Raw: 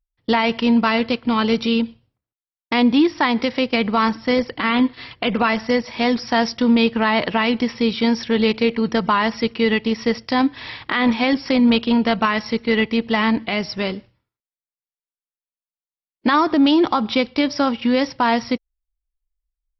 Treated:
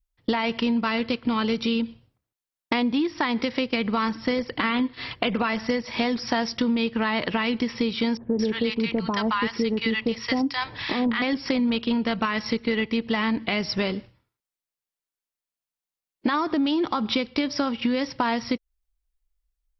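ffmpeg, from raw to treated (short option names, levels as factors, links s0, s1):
-filter_complex "[0:a]asettb=1/sr,asplit=3[s0][s1][s2];[s0]atrim=end=8.174[s3];[s1]atrim=start=8.17:end=11.22,asetpts=PTS-STARTPTS,afade=t=in:d=0.004:c=qsin,afade=t=out:st=3.046:d=0.004:c=qsin,acrossover=split=840[s4][s5];[s5]adelay=220[s6];[s4][s6]amix=inputs=2:normalize=0,atrim=end_sample=134505[s7];[s2]atrim=start=11.216[s8];[s3][s7]acrossfade=d=0.004:c1=hsin:c2=qsin[s9];[s9][s8]acrossfade=d=0.004:c1=qsin:c2=hsin,adynamicequalizer=threshold=0.0178:dfrequency=730:dqfactor=2:tfrequency=730:tqfactor=2:attack=5:release=100:ratio=0.375:range=2.5:mode=cutabove:tftype=bell,acompressor=threshold=0.0562:ratio=6,volume=1.5"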